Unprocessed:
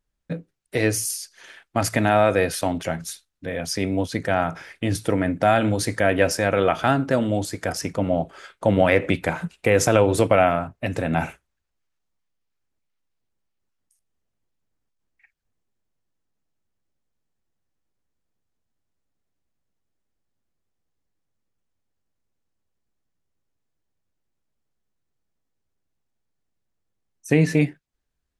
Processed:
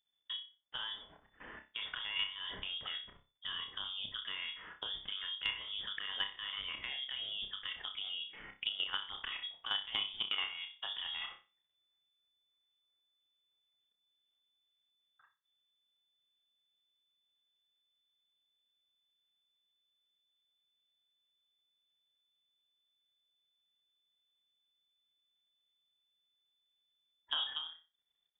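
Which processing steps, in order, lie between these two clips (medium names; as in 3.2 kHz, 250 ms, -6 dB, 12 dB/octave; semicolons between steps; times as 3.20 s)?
level held to a coarse grid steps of 16 dB; treble shelf 2.2 kHz +7 dB; frequency inversion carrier 3.5 kHz; on a send: flutter echo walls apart 5.2 m, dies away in 0.28 s; on the sum: compression 2.5:1, threshold -34 dBFS, peak gain reduction 15 dB; trim -6 dB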